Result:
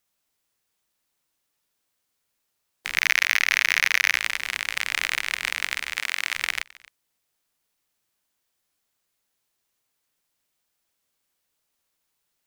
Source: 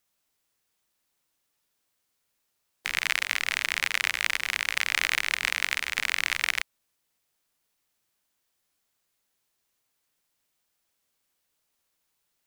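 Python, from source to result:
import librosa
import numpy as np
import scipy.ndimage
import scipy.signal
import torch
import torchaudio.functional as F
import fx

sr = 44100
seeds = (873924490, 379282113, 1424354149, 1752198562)

y = fx.leveller(x, sr, passes=3, at=(2.97, 4.18))
y = fx.highpass(y, sr, hz=440.0, slope=6, at=(5.96, 6.36))
y = y + 10.0 ** (-22.5 / 20.0) * np.pad(y, (int(264 * sr / 1000.0), 0))[:len(y)]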